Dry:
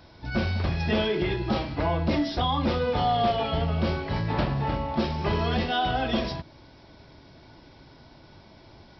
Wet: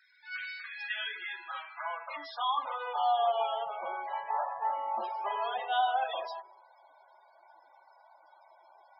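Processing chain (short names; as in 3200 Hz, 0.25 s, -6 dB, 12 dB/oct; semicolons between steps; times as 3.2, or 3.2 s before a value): resonator 52 Hz, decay 1.3 s, harmonics all, mix 40%; high-pass sweep 1800 Hz -> 810 Hz, 0.57–3.4; loudest bins only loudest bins 32; gain -3 dB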